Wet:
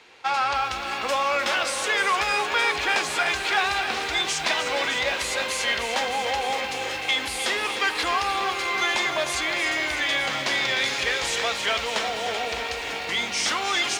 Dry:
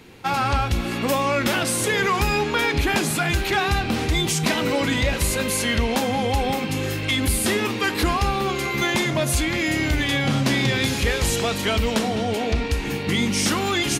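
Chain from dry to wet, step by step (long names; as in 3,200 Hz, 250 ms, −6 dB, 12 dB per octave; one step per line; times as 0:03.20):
three-way crossover with the lows and the highs turned down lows −23 dB, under 510 Hz, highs −23 dB, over 7,800 Hz
feedback echo at a low word length 304 ms, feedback 80%, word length 8 bits, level −9.5 dB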